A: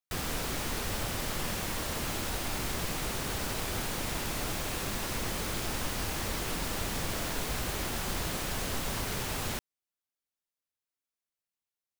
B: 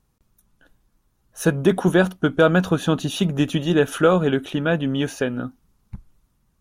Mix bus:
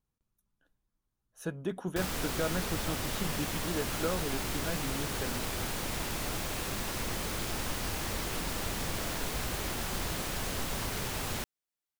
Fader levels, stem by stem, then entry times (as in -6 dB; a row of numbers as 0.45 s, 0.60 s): -1.0 dB, -17.5 dB; 1.85 s, 0.00 s